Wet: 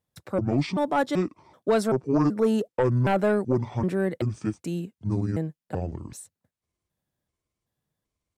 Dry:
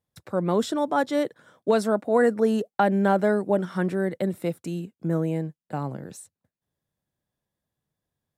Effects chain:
pitch shifter gated in a rhythm −8 semitones, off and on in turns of 383 ms
sine wavefolder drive 4 dB, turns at −8 dBFS
level −7 dB

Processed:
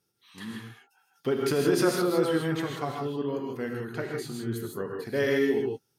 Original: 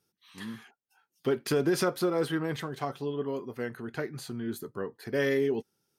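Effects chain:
reverb whose tail is shaped and stops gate 180 ms rising, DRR 0.5 dB

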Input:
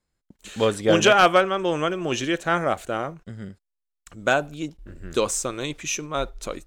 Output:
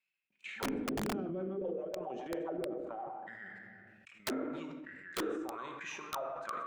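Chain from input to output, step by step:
envelope filter 260–2,600 Hz, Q 15, down, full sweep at −16.5 dBFS
high-pass filter 92 Hz 12 dB per octave
shaped tremolo saw down 3.1 Hz, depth 85%
downward compressor 4 to 1, threshold −57 dBFS, peak gain reduction 23.5 dB
low-shelf EQ 150 Hz +9 dB
convolution reverb RT60 1.0 s, pre-delay 5 ms, DRR 4 dB
0:01.05–0:03.10: rotating-speaker cabinet horn 7.5 Hz
parametric band 240 Hz +3 dB 1 octave
wrap-around overflow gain 45 dB
level that may fall only so fast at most 25 dB per second
level +15.5 dB

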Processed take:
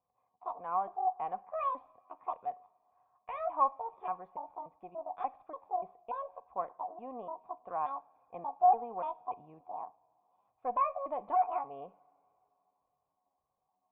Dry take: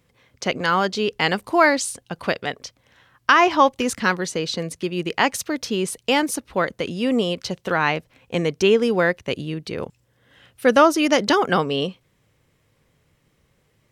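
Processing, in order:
pitch shifter gated in a rhythm +10.5 semitones, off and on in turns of 291 ms
tube saturation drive 10 dB, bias 0.6
formant resonators in series a
coupled-rooms reverb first 0.44 s, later 3.2 s, from −20 dB, DRR 16.5 dB

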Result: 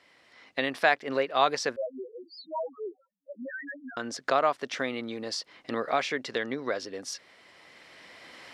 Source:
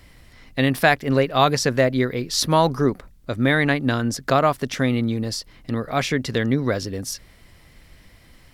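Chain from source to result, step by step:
camcorder AGC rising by 8.4 dB per second
high-pass filter 450 Hz 12 dB per octave
0:01.76–0:03.97: spectral peaks only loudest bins 1
high-frequency loss of the air 86 metres
level −5 dB

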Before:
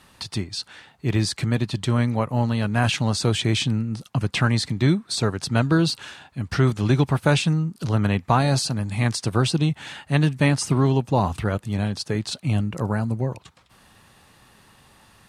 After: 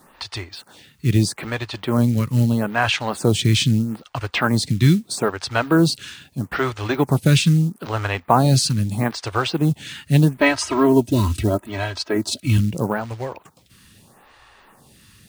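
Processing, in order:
0:10.37–0:12.58: comb filter 3.1 ms, depth 92%
log-companded quantiser 6 bits
phaser with staggered stages 0.78 Hz
level +6 dB

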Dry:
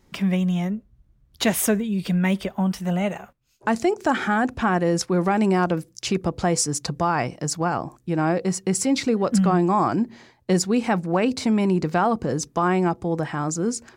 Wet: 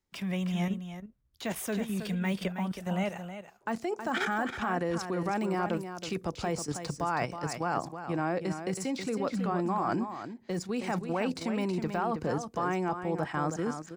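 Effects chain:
de-essing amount 90%
low-shelf EQ 430 Hz −6.5 dB
output level in coarse steps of 10 dB
on a send: single-tap delay 321 ms −7.5 dB
on the sum: multiband upward and downward expander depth 40%

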